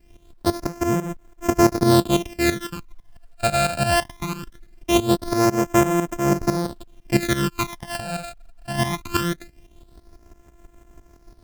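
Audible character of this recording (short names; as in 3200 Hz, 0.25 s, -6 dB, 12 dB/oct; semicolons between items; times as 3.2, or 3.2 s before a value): a buzz of ramps at a fixed pitch in blocks of 128 samples; phasing stages 12, 0.21 Hz, lowest notch 330–4200 Hz; a quantiser's noise floor 12-bit, dither none; tremolo saw up 6 Hz, depth 75%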